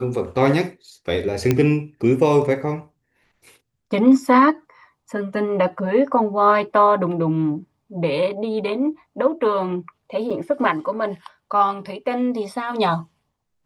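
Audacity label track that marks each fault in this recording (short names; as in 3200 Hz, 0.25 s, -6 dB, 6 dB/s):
1.510000	1.510000	pop -5 dBFS
10.300000	10.310000	gap 6 ms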